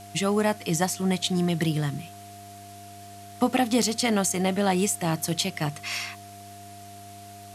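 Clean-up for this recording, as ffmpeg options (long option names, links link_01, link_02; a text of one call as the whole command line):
ffmpeg -i in.wav -af "adeclick=threshold=4,bandreject=frequency=100.8:width_type=h:width=4,bandreject=frequency=201.6:width_type=h:width=4,bandreject=frequency=302.4:width_type=h:width=4,bandreject=frequency=403.2:width_type=h:width=4,bandreject=frequency=700:width=30,afwtdn=0.0035" out.wav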